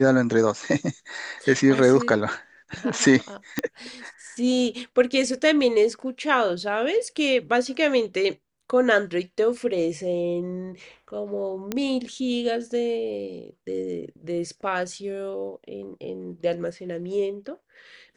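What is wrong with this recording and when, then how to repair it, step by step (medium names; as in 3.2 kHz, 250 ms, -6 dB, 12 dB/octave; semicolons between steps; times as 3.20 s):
3.59 s: pop -9 dBFS
11.72 s: pop -12 dBFS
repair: de-click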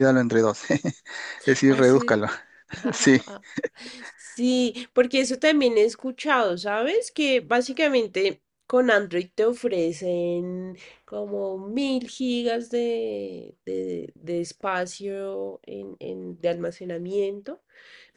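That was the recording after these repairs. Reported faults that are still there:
nothing left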